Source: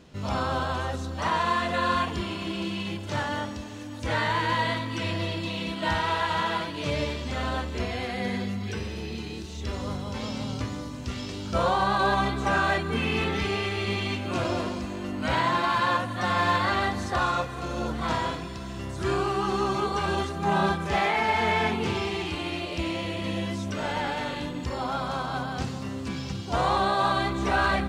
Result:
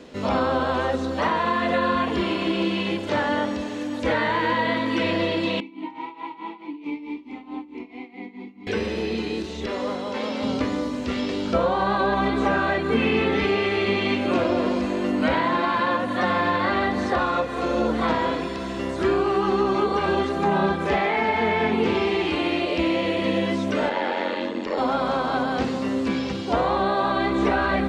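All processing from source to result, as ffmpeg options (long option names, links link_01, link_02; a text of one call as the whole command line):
ffmpeg -i in.wav -filter_complex "[0:a]asettb=1/sr,asplit=3[link_01][link_02][link_03];[link_01]atrim=end=5.604[link_04];[link_02]atrim=start=5.6:end=8.67,asetpts=PTS-STARTPTS,afade=type=in:duration=0.004:curve=qsin,afade=type=out:start_time=3.066:duration=0.004:curve=qsin,tremolo=f=4.6:d=0.83,asplit=3[link_05][link_06][link_07];[link_05]bandpass=frequency=300:width_type=q:width=8,volume=0dB[link_08];[link_06]bandpass=frequency=870:width_type=q:width=8,volume=-6dB[link_09];[link_07]bandpass=frequency=2240:width_type=q:width=8,volume=-9dB[link_10];[link_08][link_09][link_10]amix=inputs=3:normalize=0[link_11];[link_03]atrim=start=8.666[link_12];[link_04][link_11]acrossfade=duration=0.004:curve1=hsin:curve2=qsin[link_13];[link_13][link_12]acrossfade=duration=0.004:curve1=qsin:curve2=hsin,asettb=1/sr,asplit=3[link_14][link_15][link_16];[link_14]atrim=end=9.664[link_17];[link_15]atrim=start=9.66:end=10.43,asetpts=PTS-STARTPTS,afade=type=in:duration=0.004:curve=qsin,afade=type=out:start_time=0.766:duration=0.004:curve=qsin,highpass=frequency=370:poles=1,highshelf=frequency=7700:gain=-10,asoftclip=type=hard:threshold=-31.5dB[link_18];[link_16]atrim=start=10.426[link_19];[link_17][link_18]acrossfade=duration=0.004:curve1=hsin:curve2=qsin[link_20];[link_20][link_19]acrossfade=duration=0.004:curve1=qsin:curve2=hsin,asettb=1/sr,asplit=3[link_21][link_22][link_23];[link_21]atrim=end=23.894[link_24];[link_22]atrim=start=23.89:end=24.78,asetpts=PTS-STARTPTS,afade=type=in:duration=0.004:curve=qsin,afade=type=out:start_time=0.886:duration=0.004:curve=qsin,highpass=220,lowpass=5200,aeval=exprs='val(0)*sin(2*PI*45*n/s)':channel_layout=same[link_25];[link_23]atrim=start=24.776[link_26];[link_24][link_25]acrossfade=duration=0.004:curve1=hsin:curve2=qsin[link_27];[link_27][link_26]acrossfade=duration=0.004:curve1=qsin:curve2=hsin,acrossover=split=4300[link_28][link_29];[link_29]acompressor=threshold=-54dB:ratio=4:attack=1:release=60[link_30];[link_28][link_30]amix=inputs=2:normalize=0,equalizer=frequency=125:width_type=o:width=1:gain=-8,equalizer=frequency=250:width_type=o:width=1:gain=10,equalizer=frequency=500:width_type=o:width=1:gain=11,equalizer=frequency=1000:width_type=o:width=1:gain=4,equalizer=frequency=2000:width_type=o:width=1:gain=7,equalizer=frequency=4000:width_type=o:width=1:gain=5,equalizer=frequency=8000:width_type=o:width=1:gain=4,acrossover=split=250[link_31][link_32];[link_32]acompressor=threshold=-20dB:ratio=6[link_33];[link_31][link_33]amix=inputs=2:normalize=0" out.wav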